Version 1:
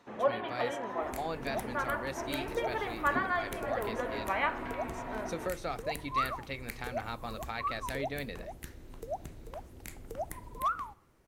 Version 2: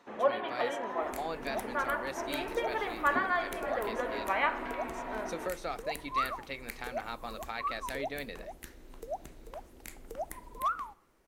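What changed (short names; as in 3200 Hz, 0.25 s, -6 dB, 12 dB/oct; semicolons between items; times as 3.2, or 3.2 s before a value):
first sound: send +11.5 dB; master: add bell 100 Hz -12.5 dB 1.4 oct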